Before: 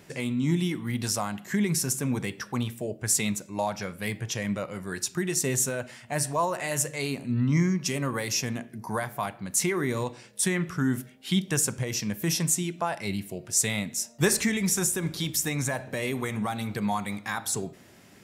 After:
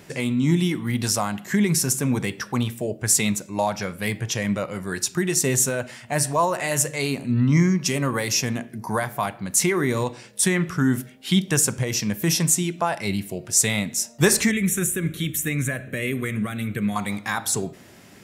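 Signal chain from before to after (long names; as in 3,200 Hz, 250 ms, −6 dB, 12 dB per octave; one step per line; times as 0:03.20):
0:14.51–0:16.96: phaser with its sweep stopped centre 2,100 Hz, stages 4
level +5.5 dB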